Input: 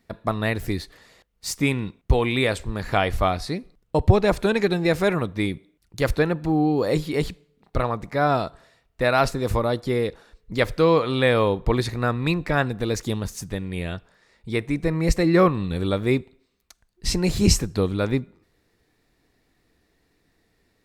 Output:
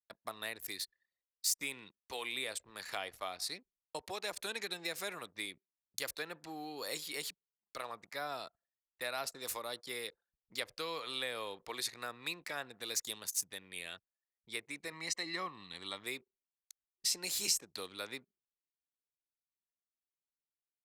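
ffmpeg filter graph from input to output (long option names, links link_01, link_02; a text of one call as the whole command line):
ffmpeg -i in.wav -filter_complex "[0:a]asettb=1/sr,asplit=3[link_01][link_02][link_03];[link_01]atrim=end=14.924[link_04];[link_02]atrim=start=14.92:end=16.04,asetpts=PTS-STARTPTS,afade=type=in:duration=0.004:curve=qsin,afade=type=out:start_time=1.116:duration=0.004:curve=qsin,lowpass=6400,aecho=1:1:1:0.52,atrim=end_sample=49392[link_05];[link_03]atrim=start=16.036[link_06];[link_04][link_05]acrossfade=duration=0.004:curve1=hsin:curve2=qsin[link_07];[link_07][link_06]acrossfade=duration=0.004:curve1=qsin:curve2=hsin,acrossover=split=240|850[link_08][link_09][link_10];[link_08]acompressor=threshold=-30dB:ratio=4[link_11];[link_09]acompressor=threshold=-21dB:ratio=4[link_12];[link_10]acompressor=threshold=-31dB:ratio=4[link_13];[link_11][link_12][link_13]amix=inputs=3:normalize=0,anlmdn=0.398,aderivative,volume=2.5dB" out.wav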